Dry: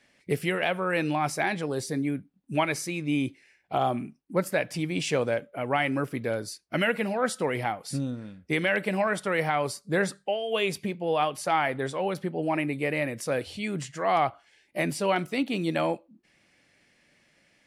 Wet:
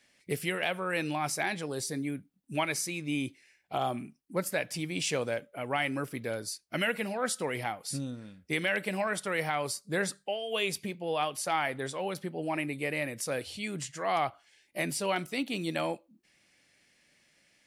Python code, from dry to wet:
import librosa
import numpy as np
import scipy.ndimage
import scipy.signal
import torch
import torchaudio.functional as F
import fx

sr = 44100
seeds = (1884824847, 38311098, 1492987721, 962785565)

y = fx.high_shelf(x, sr, hz=3100.0, db=9.5)
y = y * 10.0 ** (-6.0 / 20.0)